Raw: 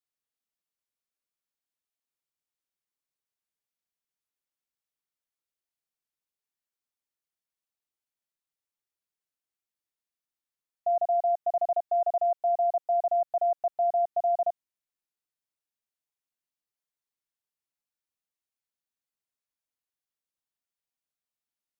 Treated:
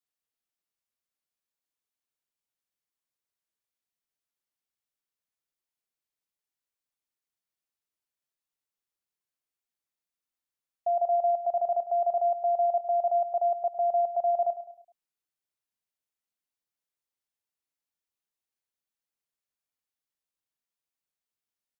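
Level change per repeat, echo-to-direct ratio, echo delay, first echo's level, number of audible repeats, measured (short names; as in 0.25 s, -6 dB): -7.5 dB, -12.0 dB, 0.104 s, -13.0 dB, 4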